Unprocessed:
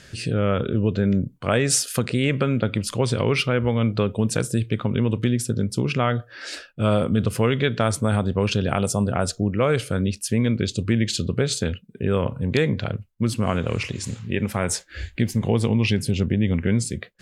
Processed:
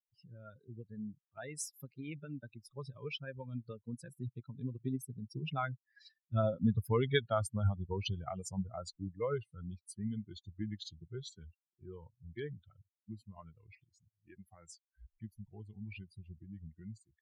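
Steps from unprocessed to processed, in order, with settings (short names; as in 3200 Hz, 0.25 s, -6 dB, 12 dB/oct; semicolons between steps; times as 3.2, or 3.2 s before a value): per-bin expansion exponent 3; Doppler pass-by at 6.96, 26 m/s, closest 27 m; gain -2.5 dB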